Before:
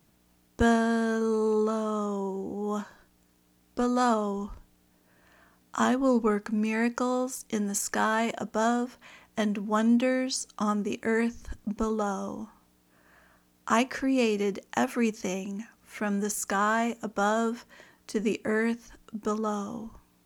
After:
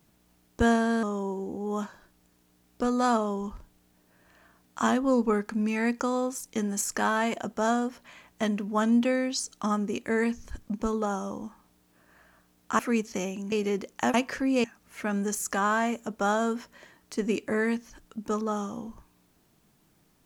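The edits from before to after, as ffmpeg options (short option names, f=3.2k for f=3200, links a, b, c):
-filter_complex "[0:a]asplit=6[a][b][c][d][e][f];[a]atrim=end=1.032[g];[b]atrim=start=1.998:end=13.762[h];[c]atrim=start=14.878:end=15.612[i];[d]atrim=start=14.258:end=14.882[j];[e]atrim=start=13.758:end=14.262[k];[f]atrim=start=15.608[l];[g][h]acrossfade=d=0.004:c1=hsin:c2=hsin[m];[m][i]acrossfade=d=0.004:c1=hsin:c2=hsin[n];[n][j]acrossfade=d=0.004:c1=hsin:c2=hsin[o];[o][k]acrossfade=d=0.004:c1=hsin:c2=hsin[p];[p][l]acrossfade=d=0.004:c1=hsin:c2=hsin"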